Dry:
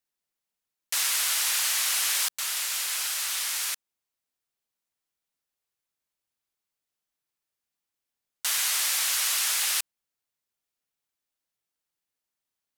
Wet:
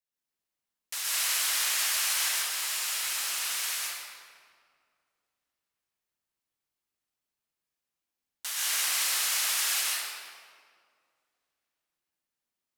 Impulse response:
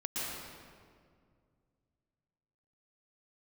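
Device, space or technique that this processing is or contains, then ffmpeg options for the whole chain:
stairwell: -filter_complex "[1:a]atrim=start_sample=2205[link_01];[0:a][link_01]afir=irnorm=-1:irlink=0,asettb=1/sr,asplit=3[link_02][link_03][link_04];[link_02]atrim=end=3.094[link_05];[link_03]atrim=start=3.09:end=3.59,asetpts=PTS-STARTPTS,afade=type=in:duration=0.004:curve=qsin,afade=type=out:start_time=0.496:duration=0.004:curve=qsin,lowshelf=frequency=170:gain=12[link_06];[link_04]atrim=start=3.586[link_07];[link_05][link_06]acrossfade=duration=0.004:curve1=hsin:curve2=qsin[link_08];[link_08][link_07]acrossfade=duration=0.004:curve1=qsin:curve2=hsin,volume=-5dB"

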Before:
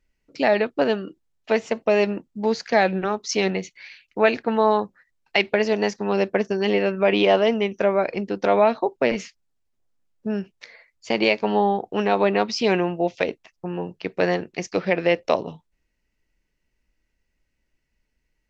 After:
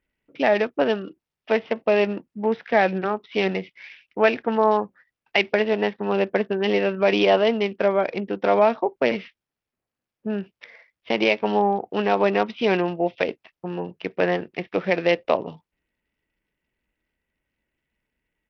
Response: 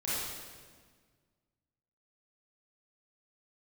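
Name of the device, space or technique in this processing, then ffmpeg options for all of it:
Bluetooth headset: -af "highpass=frequency=120:poles=1,aresample=8000,aresample=44100" -ar 44100 -c:a sbc -b:a 64k

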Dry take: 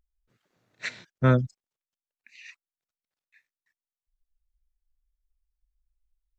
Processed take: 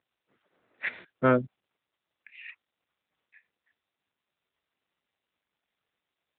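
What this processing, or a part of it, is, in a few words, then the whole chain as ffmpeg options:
telephone: -af "highpass=290,lowpass=3000,asoftclip=type=tanh:threshold=-17.5dB,volume=5dB" -ar 8000 -c:a libopencore_amrnb -b:a 10200

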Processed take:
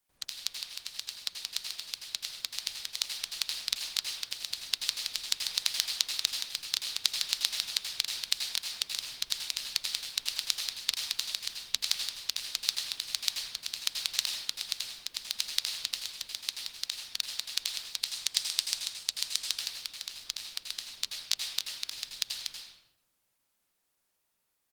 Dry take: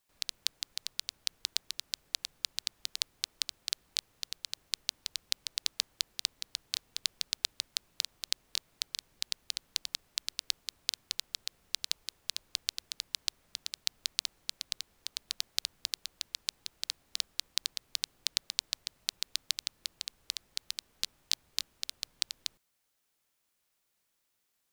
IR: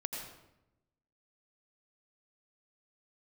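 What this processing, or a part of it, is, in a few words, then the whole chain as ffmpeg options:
speakerphone in a meeting room: -filter_complex "[0:a]asettb=1/sr,asplit=3[link_01][link_02][link_03];[link_01]atrim=end=17.854[link_04];[link_02]atrim=start=17.85:end=19.46,asetpts=PTS-STARTPTS,afade=type=in:duration=0.004:curve=qsin,afade=type=out:start_time=1.606:duration=0.004:curve=qsin,adynamicequalizer=threshold=0.00158:dfrequency=8000:dqfactor=1.3:tfrequency=8000:tqfactor=1.3:attack=5:release=100:ratio=0.375:range=3.5:mode=boostabove:tftype=bell[link_05];[link_03]atrim=start=19.456[link_06];[link_04][link_05]acrossfade=duration=0.004:curve1=hsin:curve2=qsin[link_07];[link_07][link_06]acrossfade=duration=0.004:curve1=qsin:curve2=hsin[link_08];[1:a]atrim=start_sample=2205[link_09];[link_08][link_09]afir=irnorm=-1:irlink=0,asplit=2[link_10][link_11];[link_11]adelay=100,highpass=300,lowpass=3400,asoftclip=type=hard:threshold=-13dB,volume=-9dB[link_12];[link_10][link_12]amix=inputs=2:normalize=0,dynaudnorm=framelen=680:gausssize=9:maxgain=13dB" -ar 48000 -c:a libopus -b:a 24k

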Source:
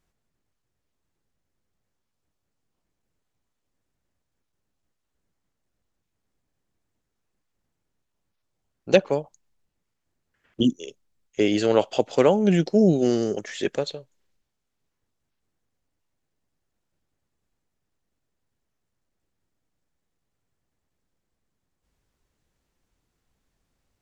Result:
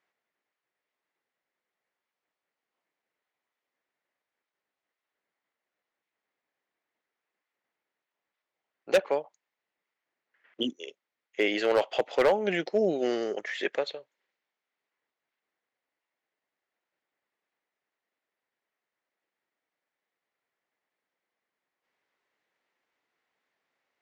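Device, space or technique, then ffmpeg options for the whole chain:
megaphone: -af "highpass=510,lowpass=3500,equalizer=frequency=2000:width_type=o:width=0.43:gain=6.5,asoftclip=type=hard:threshold=-16dB"

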